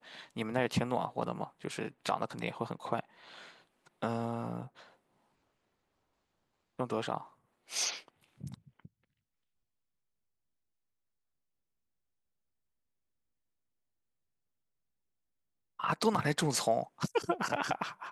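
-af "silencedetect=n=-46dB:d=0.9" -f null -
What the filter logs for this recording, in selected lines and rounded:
silence_start: 4.82
silence_end: 6.79 | silence_duration: 1.97
silence_start: 8.86
silence_end: 15.79 | silence_duration: 6.94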